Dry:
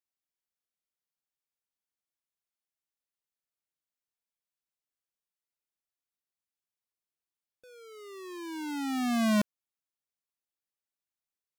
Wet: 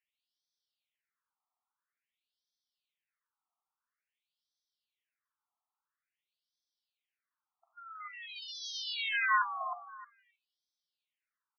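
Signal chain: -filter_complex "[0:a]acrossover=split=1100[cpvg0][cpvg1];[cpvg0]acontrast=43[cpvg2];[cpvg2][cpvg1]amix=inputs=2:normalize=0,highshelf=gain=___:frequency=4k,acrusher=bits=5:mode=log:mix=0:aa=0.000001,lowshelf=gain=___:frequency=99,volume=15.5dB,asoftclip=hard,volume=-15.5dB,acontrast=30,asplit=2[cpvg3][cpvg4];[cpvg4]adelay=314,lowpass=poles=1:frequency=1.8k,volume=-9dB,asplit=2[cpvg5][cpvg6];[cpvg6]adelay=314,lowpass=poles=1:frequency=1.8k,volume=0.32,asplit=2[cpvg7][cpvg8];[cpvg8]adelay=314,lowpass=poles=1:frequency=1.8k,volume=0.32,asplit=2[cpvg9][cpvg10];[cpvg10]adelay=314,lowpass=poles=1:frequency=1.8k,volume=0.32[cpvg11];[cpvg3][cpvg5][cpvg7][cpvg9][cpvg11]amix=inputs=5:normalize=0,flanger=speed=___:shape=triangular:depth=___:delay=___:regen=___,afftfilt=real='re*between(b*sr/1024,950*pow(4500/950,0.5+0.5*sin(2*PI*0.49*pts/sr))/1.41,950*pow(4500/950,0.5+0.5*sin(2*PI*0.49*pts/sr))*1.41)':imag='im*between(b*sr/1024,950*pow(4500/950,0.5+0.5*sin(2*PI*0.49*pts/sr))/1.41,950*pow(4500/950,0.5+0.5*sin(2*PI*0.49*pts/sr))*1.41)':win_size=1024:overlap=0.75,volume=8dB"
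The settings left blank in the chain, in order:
2.5, 5.5, 1.1, 5, 7.7, -72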